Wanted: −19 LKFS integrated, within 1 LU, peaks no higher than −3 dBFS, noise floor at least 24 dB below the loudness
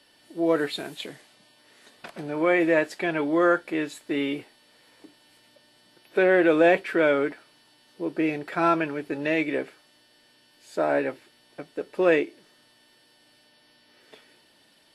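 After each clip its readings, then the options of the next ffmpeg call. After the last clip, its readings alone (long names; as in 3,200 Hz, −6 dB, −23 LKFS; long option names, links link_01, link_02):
integrated loudness −24.5 LKFS; sample peak −7.0 dBFS; target loudness −19.0 LKFS
→ -af "volume=5.5dB,alimiter=limit=-3dB:level=0:latency=1"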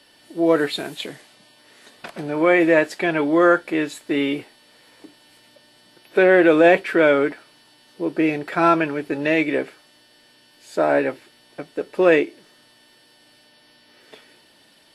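integrated loudness −19.0 LKFS; sample peak −3.0 dBFS; background noise floor −55 dBFS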